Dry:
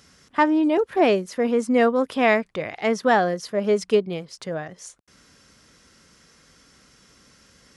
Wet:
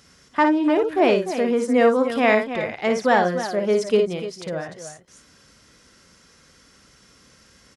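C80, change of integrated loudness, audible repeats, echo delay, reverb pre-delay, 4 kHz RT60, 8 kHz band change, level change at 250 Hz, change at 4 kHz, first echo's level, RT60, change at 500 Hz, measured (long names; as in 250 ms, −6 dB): no reverb audible, +1.5 dB, 2, 56 ms, no reverb audible, no reverb audible, +1.0 dB, +1.0 dB, +1.5 dB, −6.0 dB, no reverb audible, +1.5 dB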